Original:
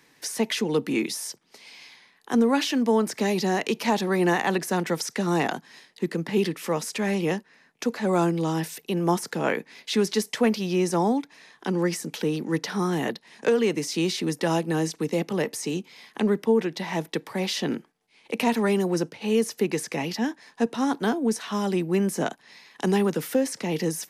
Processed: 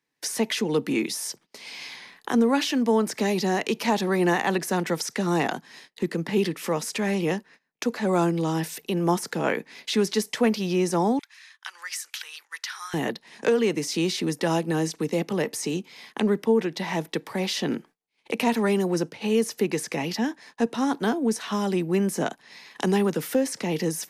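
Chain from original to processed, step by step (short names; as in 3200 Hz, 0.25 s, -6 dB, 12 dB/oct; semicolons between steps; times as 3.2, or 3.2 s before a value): recorder AGC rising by 11 dB/s; 11.19–12.94 HPF 1300 Hz 24 dB/oct; gate -48 dBFS, range -23 dB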